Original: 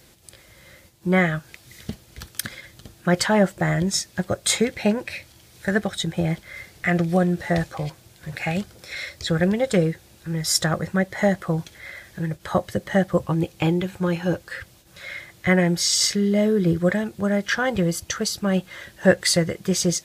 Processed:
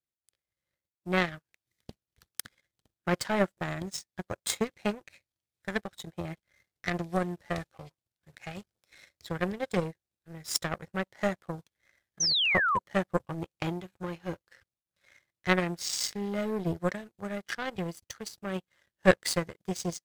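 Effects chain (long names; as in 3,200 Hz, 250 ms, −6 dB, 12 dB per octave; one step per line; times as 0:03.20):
power curve on the samples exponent 2
sound drawn into the spectrogram fall, 0:12.20–0:12.79, 940–6,300 Hz −26 dBFS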